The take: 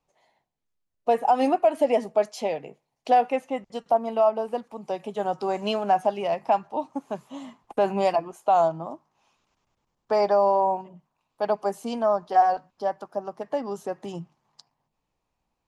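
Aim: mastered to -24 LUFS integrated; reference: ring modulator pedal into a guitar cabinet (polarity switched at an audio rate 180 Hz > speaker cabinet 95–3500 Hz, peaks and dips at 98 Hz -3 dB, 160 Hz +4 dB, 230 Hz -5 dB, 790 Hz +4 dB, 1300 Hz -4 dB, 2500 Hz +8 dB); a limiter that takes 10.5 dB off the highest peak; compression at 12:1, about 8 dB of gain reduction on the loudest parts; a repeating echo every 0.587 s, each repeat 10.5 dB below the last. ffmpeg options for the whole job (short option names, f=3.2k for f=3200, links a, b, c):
-af "acompressor=threshold=-22dB:ratio=12,alimiter=limit=-23.5dB:level=0:latency=1,aecho=1:1:587|1174|1761:0.299|0.0896|0.0269,aeval=exprs='val(0)*sgn(sin(2*PI*180*n/s))':c=same,highpass=95,equalizer=f=98:t=q:w=4:g=-3,equalizer=f=160:t=q:w=4:g=4,equalizer=f=230:t=q:w=4:g=-5,equalizer=f=790:t=q:w=4:g=4,equalizer=f=1.3k:t=q:w=4:g=-4,equalizer=f=2.5k:t=q:w=4:g=8,lowpass=f=3.5k:w=0.5412,lowpass=f=3.5k:w=1.3066,volume=9dB"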